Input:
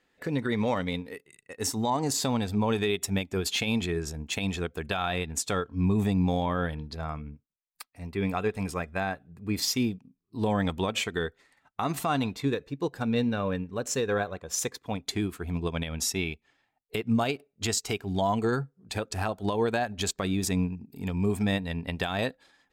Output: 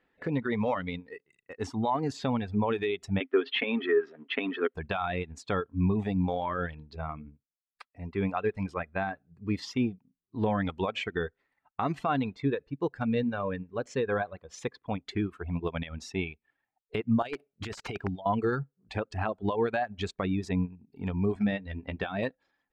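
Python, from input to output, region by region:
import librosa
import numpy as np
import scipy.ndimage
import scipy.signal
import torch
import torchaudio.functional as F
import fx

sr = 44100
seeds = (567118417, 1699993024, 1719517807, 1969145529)

y = fx.chain(x, sr, fx.law_mismatch(coded='A'),
    fx.cabinet(low_hz=250.0, low_slope=24, high_hz=3800.0, hz=(260.0, 400.0, 820.0, 1300.0, 1900.0, 3100.0), db=(9, 9, -4, 7, 10, 8)),
    fx.comb(ms=7.4, depth=0.3), at=(3.2, 4.74))
y = fx.chain(y, sr, fx.over_compress(threshold_db=-32.0, ratio=-0.5),
    fx.high_shelf(hz=6600.0, db=12.0),
    fx.overflow_wrap(gain_db=21.0), at=(17.22, 18.26))
y = fx.chain(y, sr, fx.lowpass(hz=3400.0, slope=6),
    fx.dynamic_eq(hz=970.0, q=1.8, threshold_db=-49.0, ratio=4.0, max_db=-7),
    fx.doubler(ms=15.0, db=-8.5), at=(21.34, 22.23))
y = scipy.signal.sosfilt(scipy.signal.butter(2, 2500.0, 'lowpass', fs=sr, output='sos'), y)
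y = fx.dereverb_blind(y, sr, rt60_s=1.1)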